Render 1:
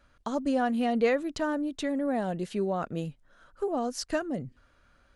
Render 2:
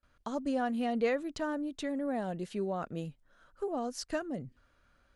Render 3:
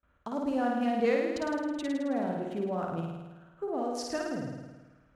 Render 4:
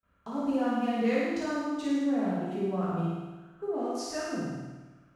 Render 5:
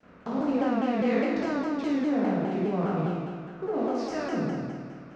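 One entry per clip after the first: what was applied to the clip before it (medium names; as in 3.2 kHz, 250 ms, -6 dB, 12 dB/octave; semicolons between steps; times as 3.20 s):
gate with hold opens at -55 dBFS; trim -5 dB
local Wiener filter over 9 samples; high-pass 42 Hz; flutter echo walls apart 9.2 m, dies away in 1.2 s
gated-style reverb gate 270 ms falling, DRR -6 dB; trim -6 dB
spectral levelling over time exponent 0.6; distance through air 150 m; vibrato with a chosen wave saw down 4.9 Hz, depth 160 cents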